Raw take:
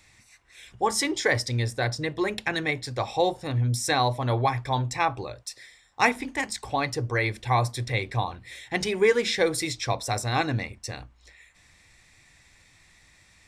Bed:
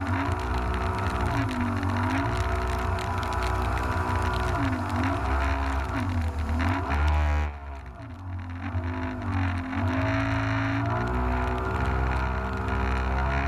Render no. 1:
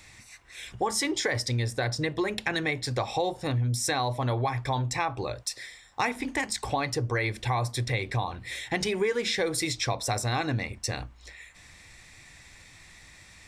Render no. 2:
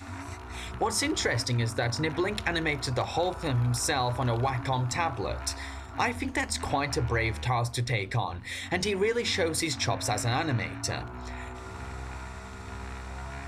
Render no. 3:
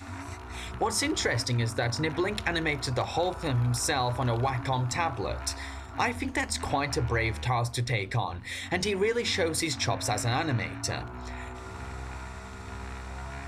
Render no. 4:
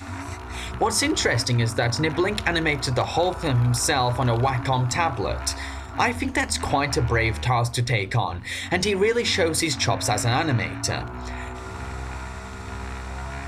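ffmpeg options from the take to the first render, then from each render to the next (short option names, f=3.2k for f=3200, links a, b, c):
-filter_complex "[0:a]asplit=2[a][b];[b]alimiter=limit=-17dB:level=0:latency=1:release=31,volume=0dB[c];[a][c]amix=inputs=2:normalize=0,acompressor=threshold=-27dB:ratio=3"
-filter_complex "[1:a]volume=-13dB[a];[0:a][a]amix=inputs=2:normalize=0"
-af anull
-af "volume=6dB"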